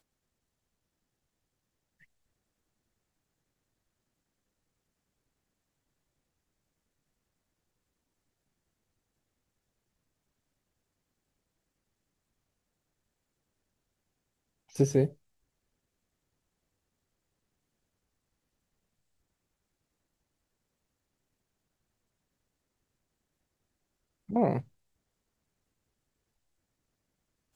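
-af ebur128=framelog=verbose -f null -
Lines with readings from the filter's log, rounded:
Integrated loudness:
  I:         -29.3 LUFS
  Threshold: -41.5 LUFS
Loudness range:
  LRA:         2.8 LU
  Threshold: -56.7 LUFS
  LRA low:   -38.2 LUFS
  LRA high:  -35.4 LUFS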